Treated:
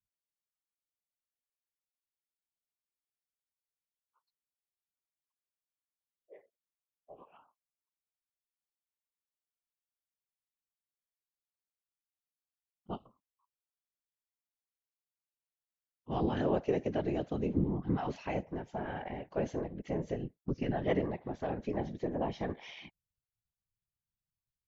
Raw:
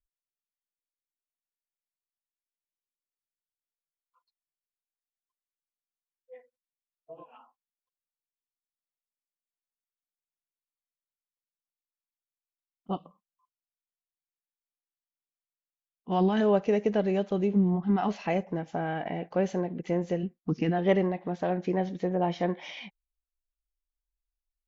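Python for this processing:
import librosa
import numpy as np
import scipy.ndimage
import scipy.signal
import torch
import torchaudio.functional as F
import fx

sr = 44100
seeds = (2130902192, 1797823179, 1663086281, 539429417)

y = fx.whisperise(x, sr, seeds[0])
y = F.gain(torch.from_numpy(y), -7.0).numpy()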